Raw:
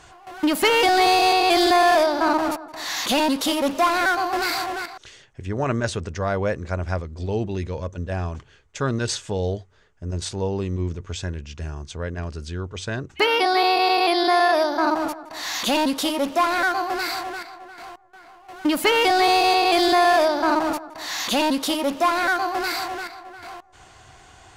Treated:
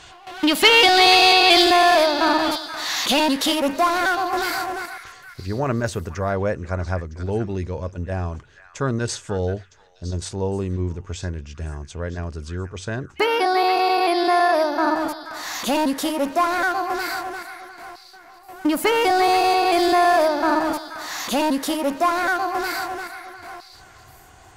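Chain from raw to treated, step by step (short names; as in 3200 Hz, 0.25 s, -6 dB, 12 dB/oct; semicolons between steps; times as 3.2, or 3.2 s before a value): bell 3500 Hz +9 dB 1.4 oct, from 1.62 s +3 dB, from 3.6 s -6 dB; delay with a stepping band-pass 0.48 s, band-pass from 1700 Hz, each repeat 1.4 oct, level -9 dB; gain +1 dB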